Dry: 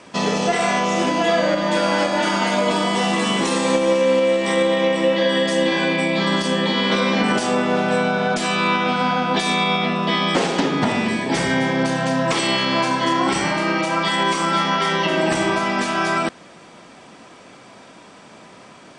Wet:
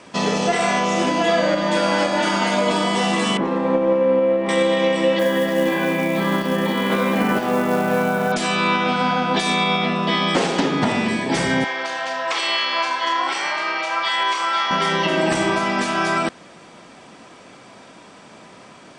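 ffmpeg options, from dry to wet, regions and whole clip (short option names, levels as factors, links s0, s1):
-filter_complex "[0:a]asettb=1/sr,asplit=3[s0][s1][s2];[s0]atrim=end=3.374[s3];[s1]atrim=start=3.37:end=4.49,asetpts=PTS-STARTPTS,afade=t=in:d=0.004:c=qsin,afade=t=out:st=1.116:d=0.004:c=qsin,acrusher=bits=6:mode=log:mix=0:aa=0.000001,lowpass=1300[s4];[s2]atrim=start=4.486[s5];[s3][s4]acrossfade=d=0.004:c1=hsin:c2=qsin[s6];[s6][s5]acrossfade=d=0.004:c1=qsin:c2=hsin,asettb=1/sr,asplit=3[s7][s8][s9];[s7]atrim=end=5.194[s10];[s8]atrim=start=5.19:end=8.32,asetpts=PTS-STARTPTS,afade=t=in:d=0.004:c=qsin,afade=t=out:st=3.126:d=0.004:c=qsin,lowpass=2200,acrusher=bits=5:mode=log:mix=0:aa=0.000001[s11];[s9]atrim=start=8.316[s12];[s10][s11]acrossfade=d=0.004:c1=hsin:c2=qsin[s13];[s13][s12]acrossfade=d=0.004:c1=qsin:c2=hsin,asettb=1/sr,asplit=3[s14][s15][s16];[s14]atrim=end=11.644[s17];[s15]atrim=start=11.64:end=14.71,asetpts=PTS-STARTPTS,afade=t=in:d=0.004:c=qsin,afade=t=out:st=3.066:d=0.004:c=qsin,highpass=780,lowpass=5500,asplit=2[s18][s19];[s19]adelay=33,volume=0.237[s20];[s18][s20]amix=inputs=2:normalize=0,atrim=end_sample=135387[s21];[s16]atrim=start=14.706[s22];[s17][s21]acrossfade=d=0.004:c1=hsin:c2=qsin[s23];[s23][s22]acrossfade=d=0.004:c1=qsin:c2=hsin"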